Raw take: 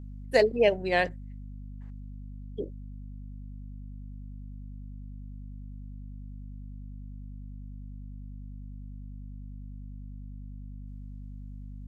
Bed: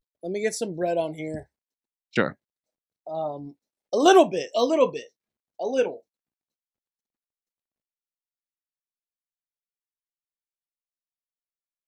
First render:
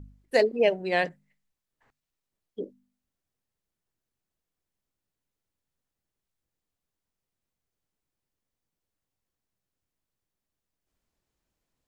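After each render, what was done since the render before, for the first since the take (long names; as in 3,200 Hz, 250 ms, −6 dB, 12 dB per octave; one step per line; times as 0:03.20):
hum removal 50 Hz, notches 5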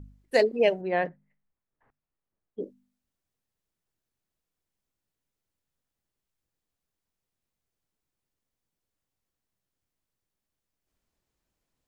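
0:00.81–0:02.60: low-pass filter 1,600 Hz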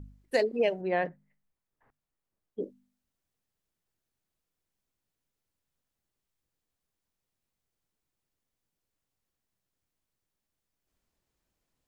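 downward compressor 2.5 to 1, threshold −24 dBFS, peak gain reduction 5.5 dB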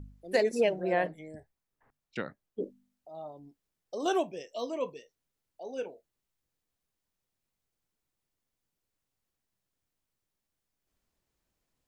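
mix in bed −13.5 dB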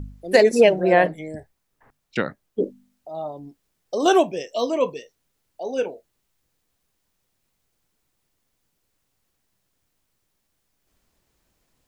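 level +12 dB
brickwall limiter −2 dBFS, peak gain reduction 1 dB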